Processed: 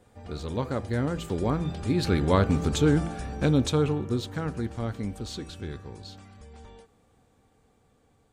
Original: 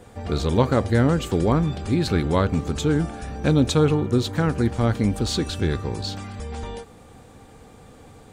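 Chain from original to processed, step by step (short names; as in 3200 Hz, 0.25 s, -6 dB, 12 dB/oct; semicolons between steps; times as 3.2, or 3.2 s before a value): Doppler pass-by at 2.7, 5 m/s, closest 3.3 m; de-hum 165.8 Hz, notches 18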